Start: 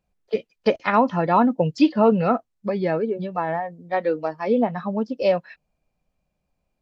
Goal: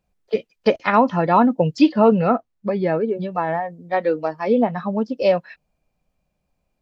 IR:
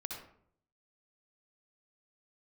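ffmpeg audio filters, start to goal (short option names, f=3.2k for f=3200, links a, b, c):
-filter_complex "[0:a]asettb=1/sr,asplit=3[a][b][c];[a]atrim=end=2.194[d];[b]atrim=start=2.19:end=3.08,asetpts=PTS-STARTPTS,afade=t=in:d=0.004:c=qsin,afade=t=out:st=0.886:d=0.004:c=qsin,highshelf=f=4.5k:g=-9.5[e];[c]atrim=start=3.076[f];[d][e]acrossfade=d=0.004:c1=hsin:c2=qsin[g];[g][f]acrossfade=d=0.004:c1=qsin:c2=hsin,volume=2.5dB"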